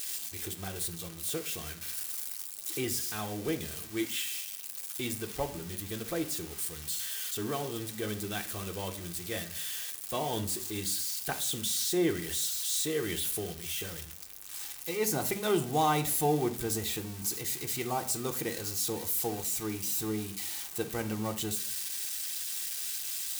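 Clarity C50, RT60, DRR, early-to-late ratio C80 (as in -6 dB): 14.0 dB, 0.55 s, 4.0 dB, 18.5 dB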